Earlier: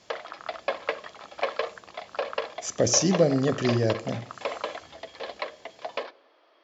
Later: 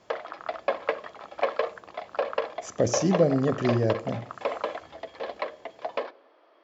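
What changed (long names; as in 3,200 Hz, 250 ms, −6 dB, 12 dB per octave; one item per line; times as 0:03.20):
background +3.5 dB
master: add parametric band 5,000 Hz −9.5 dB 2.5 octaves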